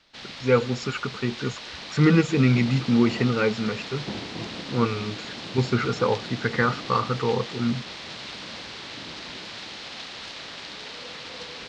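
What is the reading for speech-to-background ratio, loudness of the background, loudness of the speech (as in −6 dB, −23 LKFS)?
11.0 dB, −35.5 LKFS, −24.5 LKFS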